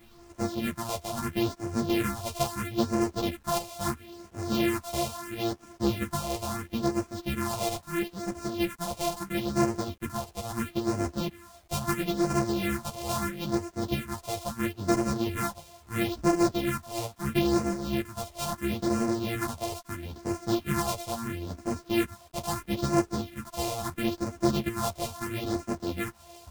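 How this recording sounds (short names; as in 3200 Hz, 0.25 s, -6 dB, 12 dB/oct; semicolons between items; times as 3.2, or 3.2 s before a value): a buzz of ramps at a fixed pitch in blocks of 128 samples; phasing stages 4, 0.75 Hz, lowest notch 260–3400 Hz; a quantiser's noise floor 10-bit, dither none; a shimmering, thickened sound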